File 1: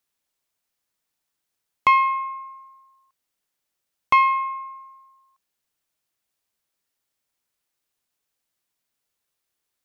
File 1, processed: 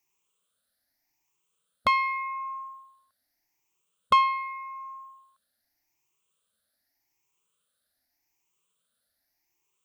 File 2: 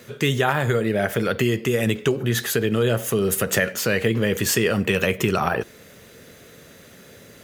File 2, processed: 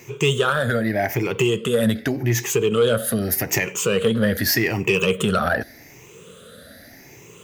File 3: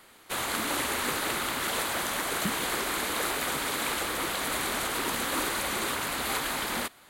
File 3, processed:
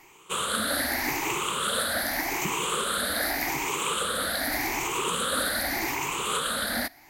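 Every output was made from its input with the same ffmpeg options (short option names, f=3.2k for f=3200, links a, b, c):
-af "afftfilt=real='re*pow(10,16/40*sin(2*PI*(0.72*log(max(b,1)*sr/1024/100)/log(2)-(0.84)*(pts-256)/sr)))':imag='im*pow(10,16/40*sin(2*PI*(0.72*log(max(b,1)*sr/1024/100)/log(2)-(0.84)*(pts-256)/sr)))':win_size=1024:overlap=0.75,acontrast=52,volume=-7dB"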